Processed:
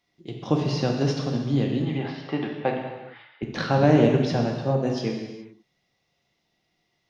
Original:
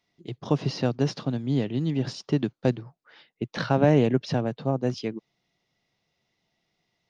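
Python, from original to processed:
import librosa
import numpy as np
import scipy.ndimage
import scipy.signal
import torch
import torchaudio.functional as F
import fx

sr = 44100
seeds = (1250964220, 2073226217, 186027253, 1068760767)

y = fx.cabinet(x, sr, low_hz=210.0, low_slope=12, high_hz=3500.0, hz=(220.0, 350.0, 810.0, 1200.0, 2100.0), db=(-8, -7, 9, 4, 7), at=(1.82, 3.43))
y = fx.rev_gated(y, sr, seeds[0], gate_ms=450, shape='falling', drr_db=0.5)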